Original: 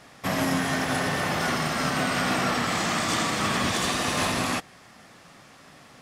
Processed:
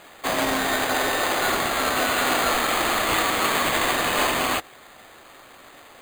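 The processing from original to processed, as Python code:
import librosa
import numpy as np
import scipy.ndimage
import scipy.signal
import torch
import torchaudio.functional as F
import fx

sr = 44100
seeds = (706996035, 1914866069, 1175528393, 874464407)

y = scipy.signal.sosfilt(scipy.signal.butter(4, 310.0, 'highpass', fs=sr, output='sos'), x)
y = np.repeat(y[::8], 8)[:len(y)]
y = y * librosa.db_to_amplitude(4.5)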